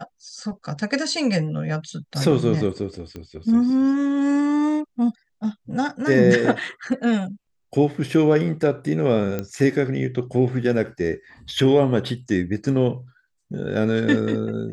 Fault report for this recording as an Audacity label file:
3.160000	3.160000	click −22 dBFS
9.390000	9.390000	click −13 dBFS

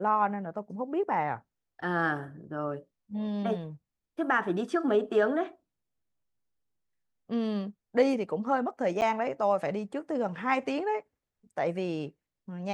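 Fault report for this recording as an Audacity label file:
9.010000	9.020000	drop-out 9.1 ms

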